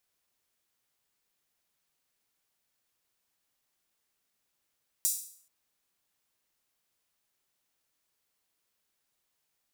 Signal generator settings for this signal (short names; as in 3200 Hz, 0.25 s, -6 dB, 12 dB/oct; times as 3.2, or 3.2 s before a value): open hi-hat length 0.43 s, high-pass 7200 Hz, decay 0.55 s